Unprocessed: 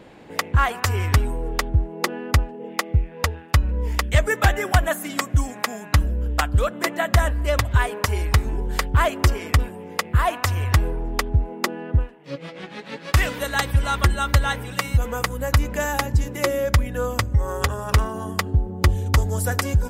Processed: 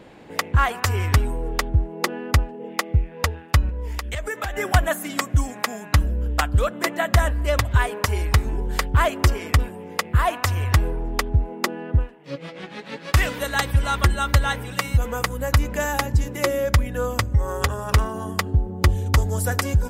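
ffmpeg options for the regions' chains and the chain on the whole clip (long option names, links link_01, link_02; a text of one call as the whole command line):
ffmpeg -i in.wav -filter_complex "[0:a]asettb=1/sr,asplit=3[link_01][link_02][link_03];[link_01]atrim=end=3.694[link_04];[link_02]atrim=start=3.69:end=4.57,asetpts=PTS-STARTPTS,afade=type=in:duration=0.004:curve=qsin,afade=type=out:start_time=0.876:duration=0.004:curve=qsin,acompressor=threshold=-23dB:ratio=6:attack=3.2:release=140:knee=1:detection=peak,equalizer=frequency=150:width=1.2:gain=-10[link_05];[link_03]atrim=start=4.566[link_06];[link_04][link_05]acrossfade=duration=0.004:curve1=hsin:curve2=qsin[link_07];[link_07][link_06]acrossfade=duration=0.004:curve1=qsin:curve2=hsin" out.wav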